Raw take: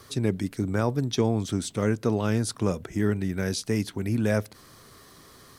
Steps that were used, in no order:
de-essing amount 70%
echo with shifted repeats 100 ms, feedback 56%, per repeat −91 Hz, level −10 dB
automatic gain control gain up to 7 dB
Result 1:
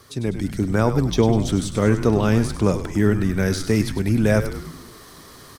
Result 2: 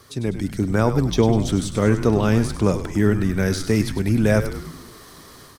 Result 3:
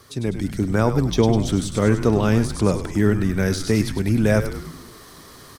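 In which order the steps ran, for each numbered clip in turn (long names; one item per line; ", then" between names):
de-essing, then echo with shifted repeats, then automatic gain control
de-essing, then automatic gain control, then echo with shifted repeats
echo with shifted repeats, then de-essing, then automatic gain control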